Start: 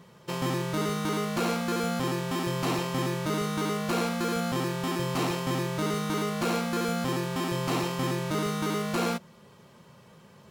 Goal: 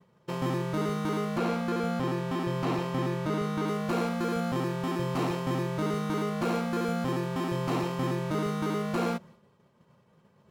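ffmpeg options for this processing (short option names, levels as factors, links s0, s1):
-filter_complex "[0:a]agate=range=0.0224:threshold=0.00501:ratio=3:detection=peak,highshelf=f=2400:g=-9.5,asettb=1/sr,asplit=3[s0][s1][s2];[s0]atrim=end=1.374[s3];[s1]atrim=start=1.37:end=3.68,asetpts=PTS-STARTPTS,afade=t=in:d=0.004:c=qsin,afade=t=out:st=2.306:d=0.004:c=qsin,acrossover=split=5200[s4][s5];[s5]acompressor=threshold=0.00282:ratio=4:attack=1:release=60[s6];[s4][s6]amix=inputs=2:normalize=0[s7];[s2]atrim=start=3.676[s8];[s3][s7]acrossfade=d=0.004:c1=hsin:c2=qsin[s9];[s9][s8]acrossfade=d=0.004:c1=qsin:c2=hsin"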